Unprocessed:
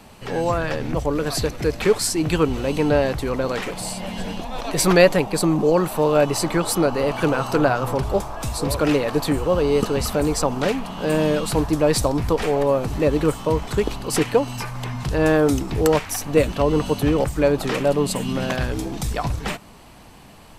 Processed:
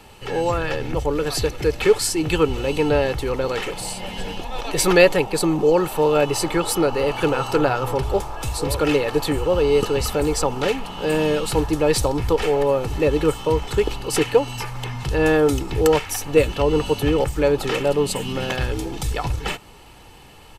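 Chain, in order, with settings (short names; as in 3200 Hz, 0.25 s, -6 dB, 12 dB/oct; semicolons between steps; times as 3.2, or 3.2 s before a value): bell 2900 Hz +5 dB 0.46 oct; comb 2.3 ms, depth 47%; gain -1 dB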